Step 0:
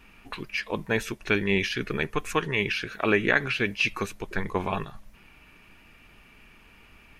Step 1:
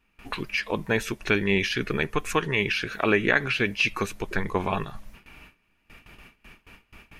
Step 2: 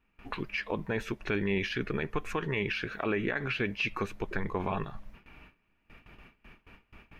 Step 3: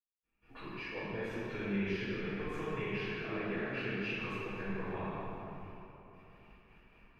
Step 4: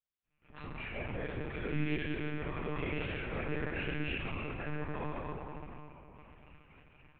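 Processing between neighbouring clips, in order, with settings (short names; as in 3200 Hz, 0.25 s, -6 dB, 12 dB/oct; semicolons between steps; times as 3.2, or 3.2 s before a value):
gate with hold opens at -42 dBFS; in parallel at +1 dB: compressor, threshold -33 dBFS, peak gain reduction 15.5 dB; on the sum: gain -1 dB
bell 10000 Hz -14.5 dB 2.1 oct; limiter -17 dBFS, peak gain reduction 9 dB; gain -3 dB
reverb RT60 3.2 s, pre-delay 0.228 s; gain +9 dB
chorus 0.48 Hz, delay 20 ms, depth 6.8 ms; monotone LPC vocoder at 8 kHz 150 Hz; gain +4 dB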